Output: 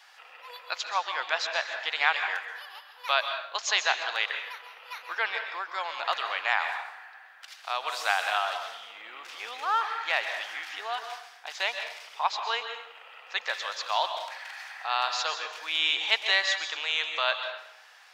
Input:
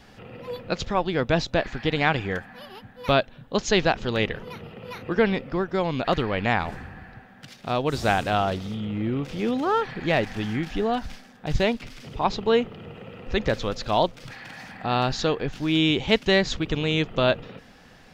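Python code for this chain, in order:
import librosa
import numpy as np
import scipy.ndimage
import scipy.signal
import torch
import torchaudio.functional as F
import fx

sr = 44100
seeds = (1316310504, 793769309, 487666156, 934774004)

y = scipy.signal.sosfilt(scipy.signal.butter(4, 870.0, 'highpass', fs=sr, output='sos'), x)
y = fx.rev_plate(y, sr, seeds[0], rt60_s=0.72, hf_ratio=0.8, predelay_ms=115, drr_db=6.0)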